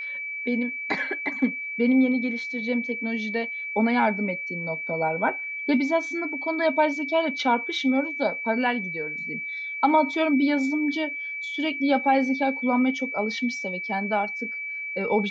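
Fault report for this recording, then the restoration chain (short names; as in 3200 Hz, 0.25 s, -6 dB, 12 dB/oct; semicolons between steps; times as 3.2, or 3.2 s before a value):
tone 2300 Hz -30 dBFS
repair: notch 2300 Hz, Q 30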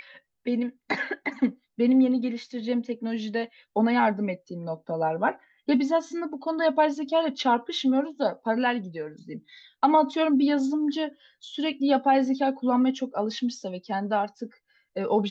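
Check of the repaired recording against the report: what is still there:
none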